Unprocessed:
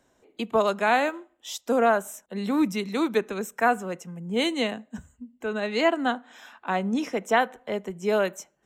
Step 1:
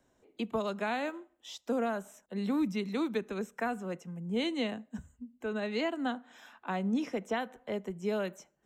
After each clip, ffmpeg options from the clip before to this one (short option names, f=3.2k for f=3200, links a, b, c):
-filter_complex "[0:a]acrossover=split=5600[a][b];[b]acompressor=threshold=-52dB:ratio=4:attack=1:release=60[c];[a][c]amix=inputs=2:normalize=0,lowshelf=f=350:g=5,acrossover=split=250|3000[d][e][f];[e]acompressor=threshold=-24dB:ratio=6[g];[d][g][f]amix=inputs=3:normalize=0,volume=-7dB"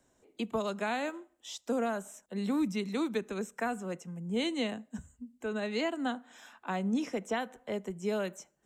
-af "equalizer=f=8k:t=o:w=0.92:g=7.5"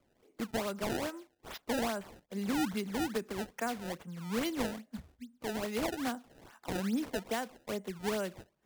-af "acrusher=samples=23:mix=1:aa=0.000001:lfo=1:lforange=36.8:lforate=2.4,volume=-2dB"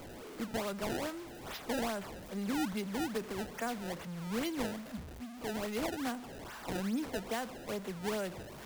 -af "aeval=exprs='val(0)+0.5*0.0119*sgn(val(0))':c=same,volume=-3.5dB"